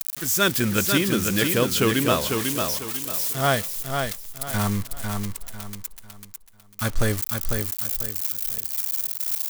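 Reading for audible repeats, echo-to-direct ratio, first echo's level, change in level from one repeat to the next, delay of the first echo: 4, -4.5 dB, -5.0 dB, -10.0 dB, 0.498 s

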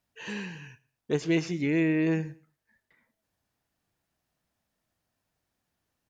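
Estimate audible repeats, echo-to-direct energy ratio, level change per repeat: 2, -22.5 dB, -11.5 dB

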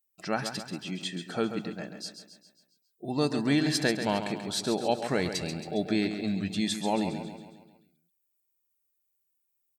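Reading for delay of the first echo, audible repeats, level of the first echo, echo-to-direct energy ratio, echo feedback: 0.136 s, 5, -9.0 dB, -7.5 dB, 52%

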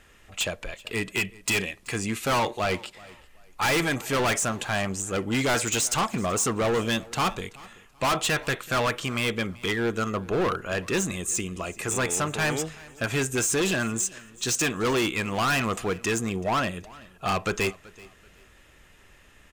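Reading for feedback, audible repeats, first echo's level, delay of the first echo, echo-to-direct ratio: 26%, 2, -22.0 dB, 0.381 s, -21.5 dB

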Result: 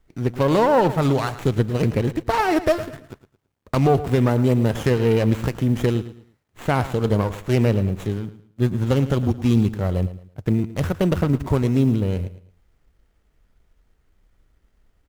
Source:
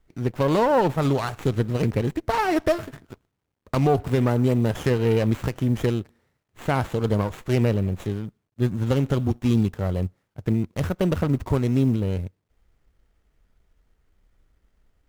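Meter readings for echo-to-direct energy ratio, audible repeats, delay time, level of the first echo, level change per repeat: -14.0 dB, 2, 0.11 s, -14.5 dB, -10.5 dB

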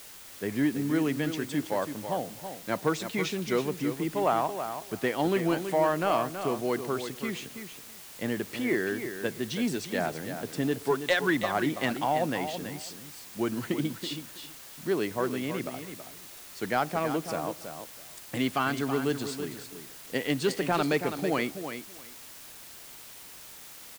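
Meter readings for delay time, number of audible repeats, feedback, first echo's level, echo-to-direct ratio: 0.327 s, 2, 16%, -9.0 dB, -9.0 dB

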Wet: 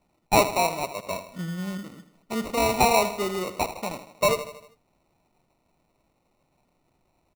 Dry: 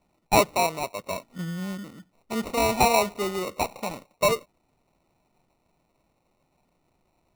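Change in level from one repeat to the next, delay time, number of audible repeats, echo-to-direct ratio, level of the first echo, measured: -5.5 dB, 79 ms, 4, -11.0 dB, -12.5 dB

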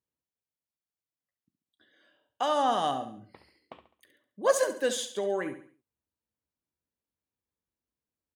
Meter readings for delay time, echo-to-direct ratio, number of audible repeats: 69 ms, -10.0 dB, 4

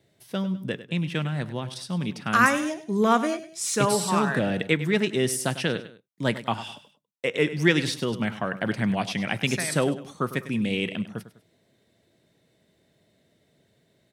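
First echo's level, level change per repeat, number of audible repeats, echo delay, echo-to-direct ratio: -14.0 dB, -8.0 dB, 2, 0.1 s, -13.5 dB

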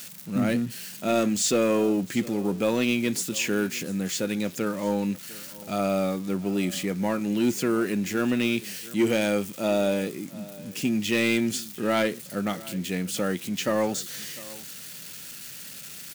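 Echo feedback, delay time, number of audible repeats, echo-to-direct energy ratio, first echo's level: no steady repeat, 0.701 s, 1, -20.0 dB, -20.0 dB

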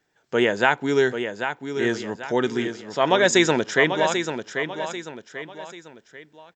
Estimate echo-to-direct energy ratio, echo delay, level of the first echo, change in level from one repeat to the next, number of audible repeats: -7.5 dB, 0.79 s, -8.0 dB, -8.0 dB, 3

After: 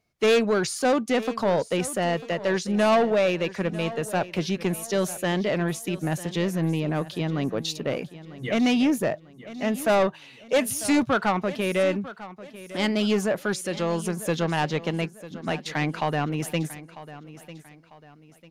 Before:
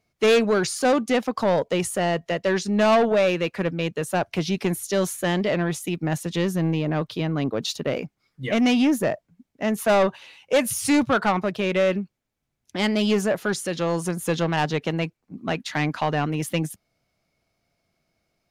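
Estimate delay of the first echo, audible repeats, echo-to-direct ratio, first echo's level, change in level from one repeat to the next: 0.947 s, 3, -15.5 dB, -16.0 dB, -8.5 dB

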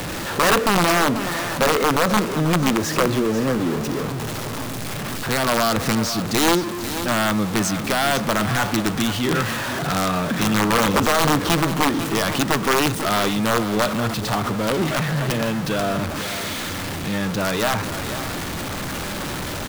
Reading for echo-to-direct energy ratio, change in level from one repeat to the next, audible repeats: -11.0 dB, -13.0 dB, 2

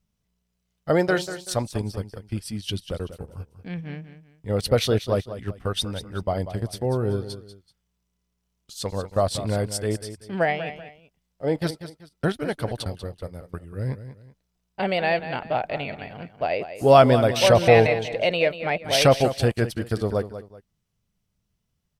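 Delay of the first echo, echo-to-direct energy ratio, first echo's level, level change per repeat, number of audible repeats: 0.191 s, -11.5 dB, -12.0 dB, -10.0 dB, 2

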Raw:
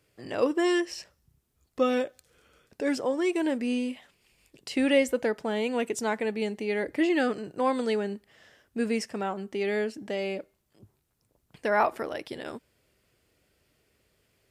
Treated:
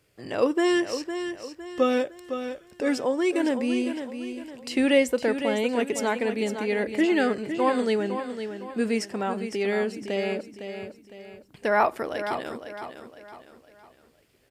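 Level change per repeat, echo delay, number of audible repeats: -8.0 dB, 0.508 s, 4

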